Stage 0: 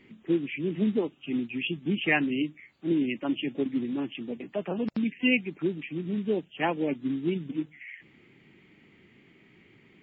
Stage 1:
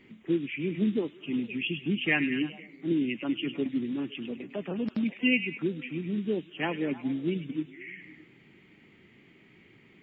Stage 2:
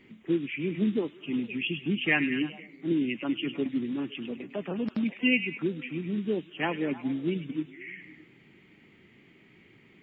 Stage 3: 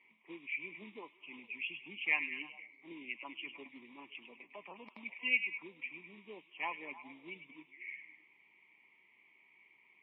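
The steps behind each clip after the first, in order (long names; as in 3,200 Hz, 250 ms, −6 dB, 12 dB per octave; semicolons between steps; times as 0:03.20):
dynamic equaliser 770 Hz, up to −7 dB, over −44 dBFS, Q 1; echo through a band-pass that steps 102 ms, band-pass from 2,800 Hz, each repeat −0.7 octaves, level −8 dB
dynamic equaliser 1,100 Hz, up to +3 dB, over −48 dBFS, Q 0.92
pair of resonant band-passes 1,500 Hz, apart 1.2 octaves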